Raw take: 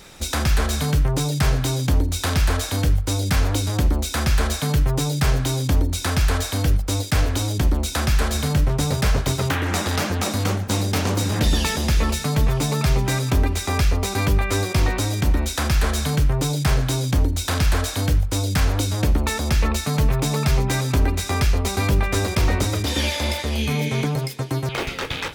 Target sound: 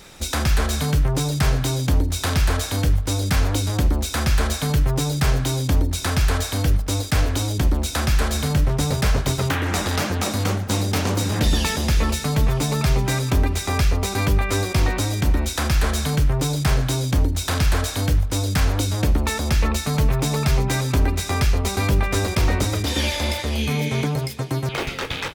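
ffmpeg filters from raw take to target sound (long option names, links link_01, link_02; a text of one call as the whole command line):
ffmpeg -i in.wav -filter_complex "[0:a]asplit=2[link_01][link_02];[link_02]adelay=699.7,volume=-21dB,highshelf=frequency=4000:gain=-15.7[link_03];[link_01][link_03]amix=inputs=2:normalize=0" out.wav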